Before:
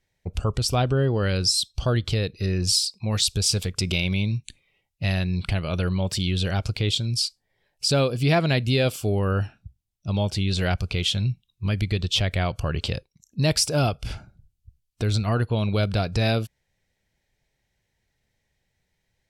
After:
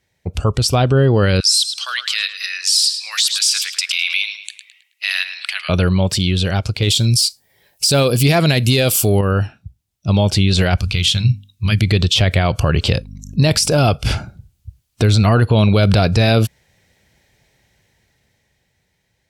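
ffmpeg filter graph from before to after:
ffmpeg -i in.wav -filter_complex "[0:a]asettb=1/sr,asplit=3[link_01][link_02][link_03];[link_01]atrim=end=1.404[link_04];[link_02]atrim=start=1.4:end=5.69,asetpts=PTS-STARTPTS,afade=type=in:duration=0.004:curve=qsin,afade=type=out:start_time=4.286:duration=0.004:curve=qsin,highpass=frequency=1500:width=0.5412,highpass=frequency=1500:width=1.3066,asplit=2[link_05][link_06];[link_06]adelay=107,lowpass=frequency=4300:poles=1,volume=-11dB,asplit=2[link_07][link_08];[link_08]adelay=107,lowpass=frequency=4300:poles=1,volume=0.49,asplit=2[link_09][link_10];[link_10]adelay=107,lowpass=frequency=4300:poles=1,volume=0.49,asplit=2[link_11][link_12];[link_12]adelay=107,lowpass=frequency=4300:poles=1,volume=0.49,asplit=2[link_13][link_14];[link_14]adelay=107,lowpass=frequency=4300:poles=1,volume=0.49[link_15];[link_05][link_07][link_09][link_11][link_13][link_15]amix=inputs=6:normalize=0,atrim=end_sample=189189[link_16];[link_03]atrim=start=5.686[link_17];[link_04][link_16]acrossfade=duration=0.004:curve1=hsin:curve2=qsin[link_18];[link_18][link_17]acrossfade=duration=0.004:curve1=qsin:curve2=hsin,asettb=1/sr,asplit=3[link_19][link_20][link_21];[link_19]atrim=end=6.824[link_22];[link_20]atrim=start=6.82:end=9.21,asetpts=PTS-STARTPTS,afade=type=in:duration=0.004:curve=qsin,afade=type=out:start_time=2.386:duration=0.004:curve=qsin,acontrast=64,aemphasis=mode=production:type=50fm[link_23];[link_21]atrim=start=9.206[link_24];[link_22][link_23]acrossfade=duration=0.004:curve1=hsin:curve2=qsin[link_25];[link_25][link_24]acrossfade=duration=0.004:curve1=qsin:curve2=hsin,asettb=1/sr,asplit=3[link_26][link_27][link_28];[link_26]atrim=end=10.814[link_29];[link_27]atrim=start=10.81:end=11.81,asetpts=PTS-STARTPTS,afade=type=in:duration=0.004:curve=qsin,afade=type=out:start_time=0.996:duration=0.004:curve=qsin,equalizer=frequency=500:width=0.48:gain=-14.5,bandreject=frequency=50:width_type=h:width=6,bandreject=frequency=100:width_type=h:width=6,bandreject=frequency=150:width_type=h:width=6,bandreject=frequency=200:width_type=h:width=6,bandreject=frequency=250:width_type=h:width=6,bandreject=frequency=300:width_type=h:width=6[link_30];[link_28]atrim=start=11.806[link_31];[link_29][link_30]acrossfade=duration=0.004:curve1=hsin:curve2=qsin[link_32];[link_32][link_31]acrossfade=duration=0.004:curve1=qsin:curve2=hsin,asettb=1/sr,asplit=3[link_33][link_34][link_35];[link_33]atrim=end=12.974[link_36];[link_34]atrim=start=12.97:end=13.79,asetpts=PTS-STARTPTS,afade=type=in:duration=0.004:curve=qsin,afade=type=out:start_time=0.816:duration=0.004:curve=qsin,aeval=exprs='val(0)+0.00631*(sin(2*PI*50*n/s)+sin(2*PI*2*50*n/s)/2+sin(2*PI*3*50*n/s)/3+sin(2*PI*4*50*n/s)/4+sin(2*PI*5*50*n/s)/5)':channel_layout=same,tremolo=f=44:d=0.4[link_37];[link_35]atrim=start=13.786[link_38];[link_36][link_37]acrossfade=duration=0.004:curve1=hsin:curve2=qsin[link_39];[link_39][link_38]acrossfade=duration=0.004:curve1=qsin:curve2=hsin,highpass=58,dynaudnorm=framelen=280:gausssize=11:maxgain=12dB,alimiter=level_in=12.5dB:limit=-1dB:release=50:level=0:latency=1,volume=-4.5dB" out.wav

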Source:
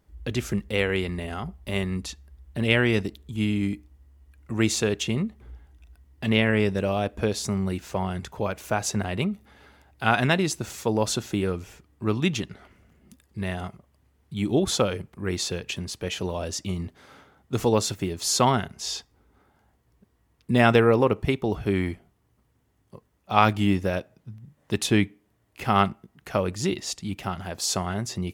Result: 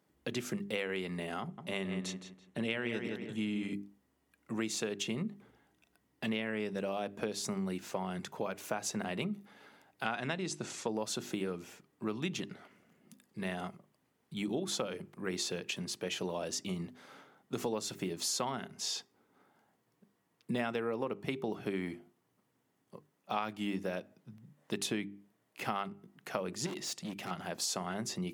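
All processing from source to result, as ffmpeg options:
ffmpeg -i in.wav -filter_complex "[0:a]asettb=1/sr,asplit=3[link_01][link_02][link_03];[link_01]atrim=end=1.414[link_04];[link_02]atrim=start=1.41:end=3.73,asetpts=PTS-STARTPTS,afade=type=in:duration=0.004:curve=qsin,afade=type=out:start_time=2.316:duration=0.004:curve=qsin,lowpass=9700,bandreject=frequency=4800:width=6.9,asplit=2[link_05][link_06];[link_06]adelay=167,lowpass=frequency=4000:poles=1,volume=-8dB,asplit=2[link_07][link_08];[link_08]adelay=167,lowpass=frequency=4000:poles=1,volume=0.3,asplit=2[link_09][link_10];[link_10]adelay=167,lowpass=frequency=4000:poles=1,volume=0.3,asplit=2[link_11][link_12];[link_12]adelay=167,lowpass=frequency=4000:poles=1,volume=0.3[link_13];[link_05][link_07][link_09][link_11][link_13]amix=inputs=5:normalize=0,atrim=end_sample=102312[link_14];[link_03]atrim=start=3.726[link_15];[link_04][link_14]acrossfade=duration=0.004:curve1=hsin:curve2=qsin[link_16];[link_16][link_15]acrossfade=duration=0.004:curve1=qsin:curve2=hsin,asettb=1/sr,asplit=3[link_17][link_18][link_19];[link_17]atrim=end=10.054[link_20];[link_18]atrim=start=10.05:end=10.94,asetpts=PTS-STARTPTS,afade=type=in:duration=0.004:curve=qsin,afade=type=out:start_time=0.886:duration=0.004:curve=qsin,lowpass=frequency=9100:width=0.5412,lowpass=frequency=9100:width=1.3066,deesser=0.45[link_21];[link_19]atrim=start=10.936[link_22];[link_20][link_21]acrossfade=duration=0.004:curve1=hsin:curve2=qsin[link_23];[link_23][link_22]acrossfade=duration=0.004:curve1=qsin:curve2=hsin,asettb=1/sr,asplit=3[link_24][link_25][link_26];[link_24]atrim=end=26.664[link_27];[link_25]atrim=start=26.66:end=27.31,asetpts=PTS-STARTPTS,afade=type=in:duration=0.004:curve=qsin,afade=type=out:start_time=0.646:duration=0.004:curve=qsin,acompressor=mode=upward:threshold=-34dB:ratio=2.5:attack=3.2:release=140:knee=2.83:detection=peak,volume=31dB,asoftclip=hard,volume=-31dB[link_28];[link_26]atrim=start=27.306[link_29];[link_27][link_28]acrossfade=duration=0.004:curve1=hsin:curve2=qsin[link_30];[link_30][link_29]acrossfade=duration=0.004:curve1=qsin:curve2=hsin,highpass=frequency=150:width=0.5412,highpass=frequency=150:width=1.3066,bandreject=frequency=50:width_type=h:width=6,bandreject=frequency=100:width_type=h:width=6,bandreject=frequency=150:width_type=h:width=6,bandreject=frequency=200:width_type=h:width=6,bandreject=frequency=250:width_type=h:width=6,bandreject=frequency=300:width_type=h:width=6,bandreject=frequency=350:width_type=h:width=6,bandreject=frequency=400:width_type=h:width=6,acompressor=threshold=-28dB:ratio=6,volume=-4dB" out.wav

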